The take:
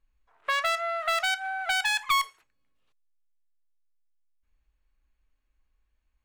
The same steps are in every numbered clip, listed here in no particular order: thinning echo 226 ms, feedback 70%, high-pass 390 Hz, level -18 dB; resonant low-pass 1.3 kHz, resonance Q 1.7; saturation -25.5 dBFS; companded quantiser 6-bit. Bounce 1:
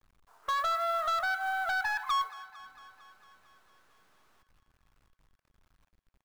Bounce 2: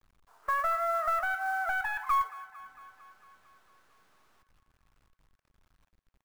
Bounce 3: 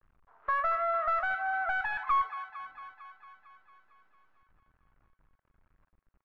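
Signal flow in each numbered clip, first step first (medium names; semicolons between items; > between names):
resonant low-pass > saturation > companded quantiser > thinning echo; saturation > resonant low-pass > companded quantiser > thinning echo; companded quantiser > thinning echo > saturation > resonant low-pass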